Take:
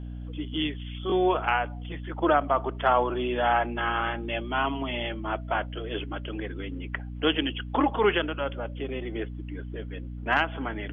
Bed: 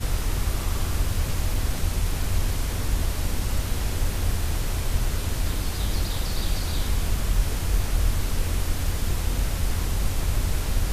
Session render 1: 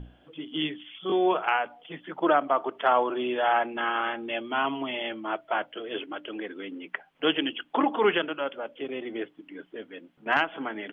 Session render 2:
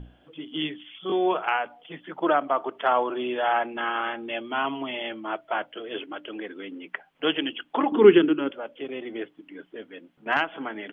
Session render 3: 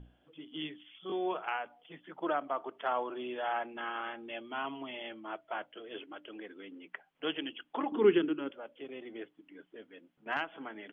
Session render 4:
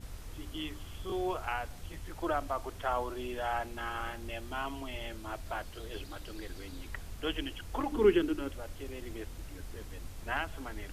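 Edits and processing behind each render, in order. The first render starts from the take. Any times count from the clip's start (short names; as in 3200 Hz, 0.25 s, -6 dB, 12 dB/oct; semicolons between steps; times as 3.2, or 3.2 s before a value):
notches 60/120/180/240/300 Hz
7.92–8.51 resonant low shelf 460 Hz +9 dB, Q 3
gain -10.5 dB
add bed -20 dB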